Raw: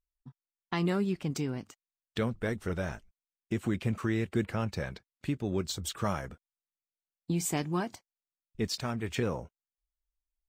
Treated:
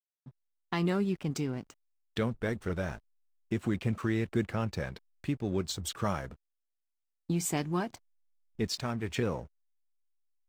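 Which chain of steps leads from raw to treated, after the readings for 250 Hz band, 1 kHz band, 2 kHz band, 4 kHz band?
0.0 dB, 0.0 dB, −0.5 dB, −0.5 dB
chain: slack as between gear wheels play −49 dBFS

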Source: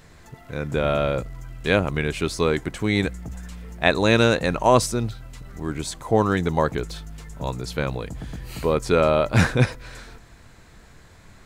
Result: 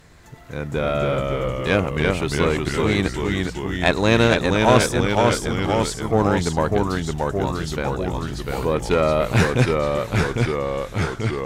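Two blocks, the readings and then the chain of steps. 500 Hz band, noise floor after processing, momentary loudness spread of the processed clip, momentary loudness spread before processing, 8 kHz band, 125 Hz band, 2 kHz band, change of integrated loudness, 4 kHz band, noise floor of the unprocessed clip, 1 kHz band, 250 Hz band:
+2.5 dB, −35 dBFS, 8 LU, 18 LU, +3.0 dB, +3.5 dB, +2.5 dB, +1.5 dB, +3.0 dB, −49 dBFS, +3.0 dB, +3.5 dB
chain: loose part that buzzes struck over −19 dBFS, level −17 dBFS
delay with pitch and tempo change per echo 235 ms, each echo −1 semitone, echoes 3
harmonic generator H 4 −19 dB, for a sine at −0.5 dBFS

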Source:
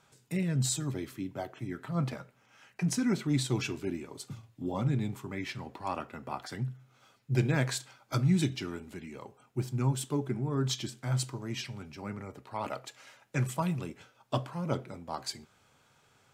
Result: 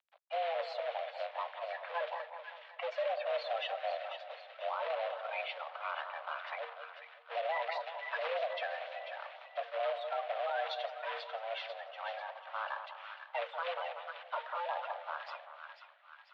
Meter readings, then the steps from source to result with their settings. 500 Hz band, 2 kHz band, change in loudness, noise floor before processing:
+2.0 dB, +2.0 dB, −5.5 dB, −67 dBFS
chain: spectral magnitudes quantised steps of 30 dB
log-companded quantiser 4 bits
single-sideband voice off tune +340 Hz 230–3,200 Hz
on a send: echo with a time of its own for lows and highs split 1,300 Hz, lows 189 ms, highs 493 ms, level −9 dB
on the sum: brickwall limiter −26.5 dBFS, peak gain reduction 10 dB

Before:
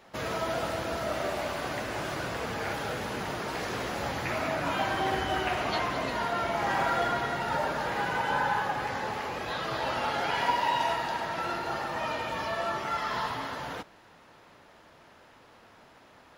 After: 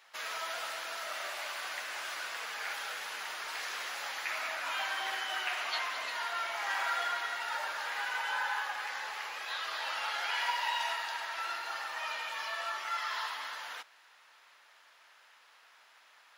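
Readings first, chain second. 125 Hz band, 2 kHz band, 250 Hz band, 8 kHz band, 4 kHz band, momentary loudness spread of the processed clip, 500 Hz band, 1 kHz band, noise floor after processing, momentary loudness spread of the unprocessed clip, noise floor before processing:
below −35 dB, −1.5 dB, below −25 dB, 0.0 dB, 0.0 dB, 6 LU, −15.0 dB, −7.0 dB, −62 dBFS, 6 LU, −56 dBFS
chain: high-pass filter 1,400 Hz 12 dB per octave

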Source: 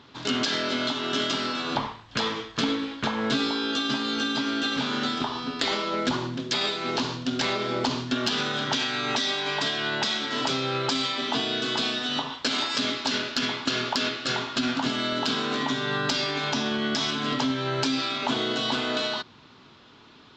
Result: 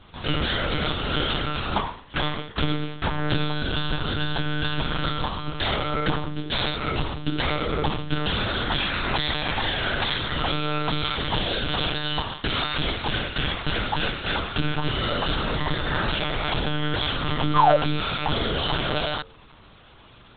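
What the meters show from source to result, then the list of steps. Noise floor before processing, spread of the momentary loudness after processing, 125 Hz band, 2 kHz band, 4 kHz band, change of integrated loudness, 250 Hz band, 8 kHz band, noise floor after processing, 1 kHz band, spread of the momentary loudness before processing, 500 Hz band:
−52 dBFS, 3 LU, +9.5 dB, +1.5 dB, −0.5 dB, +1.0 dB, −1.5 dB, below −40 dB, −49 dBFS, +3.5 dB, 3 LU, +1.5 dB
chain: sound drawn into the spectrogram fall, 0:17.55–0:17.77, 540–1,200 Hz −19 dBFS
one-pitch LPC vocoder at 8 kHz 150 Hz
hum removal 89.43 Hz, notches 6
level +3 dB

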